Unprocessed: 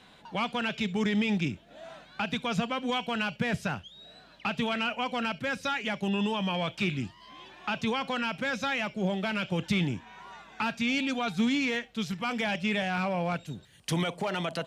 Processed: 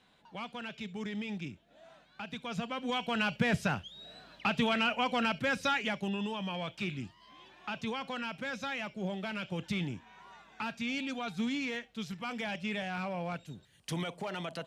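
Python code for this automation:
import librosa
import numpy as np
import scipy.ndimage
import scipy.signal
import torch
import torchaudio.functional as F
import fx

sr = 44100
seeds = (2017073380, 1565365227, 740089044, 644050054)

y = fx.gain(x, sr, db=fx.line((2.26, -11.0), (3.31, 0.5), (5.75, 0.5), (6.19, -7.0)))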